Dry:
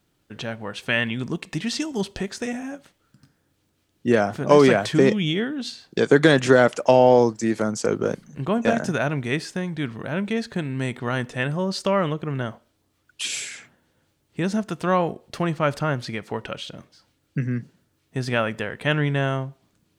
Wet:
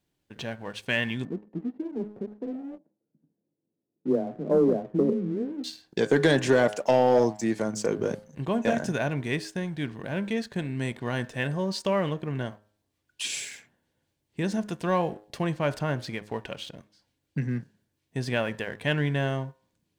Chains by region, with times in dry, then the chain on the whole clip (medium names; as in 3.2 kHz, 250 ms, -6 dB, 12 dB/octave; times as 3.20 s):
1.25–5.64 s: Butterworth band-pass 290 Hz, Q 0.71 + distance through air 470 m + frequency shift +16 Hz
whole clip: band-stop 1.3 kHz, Q 5.1; de-hum 104.9 Hz, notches 17; waveshaping leveller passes 1; trim -7.5 dB